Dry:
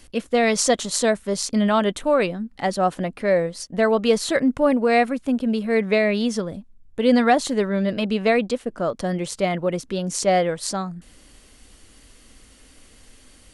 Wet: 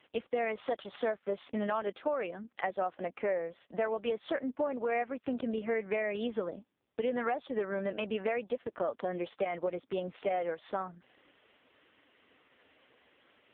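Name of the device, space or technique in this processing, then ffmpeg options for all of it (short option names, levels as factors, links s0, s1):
voicemail: -filter_complex "[0:a]asplit=3[s0][s1][s2];[s0]afade=t=out:st=1.8:d=0.02[s3];[s1]highpass=110,afade=t=in:st=1.8:d=0.02,afade=t=out:st=3.16:d=0.02[s4];[s2]afade=t=in:st=3.16:d=0.02[s5];[s3][s4][s5]amix=inputs=3:normalize=0,highpass=400,lowpass=3000,acompressor=threshold=0.0447:ratio=8,volume=0.841" -ar 8000 -c:a libopencore_amrnb -b:a 4750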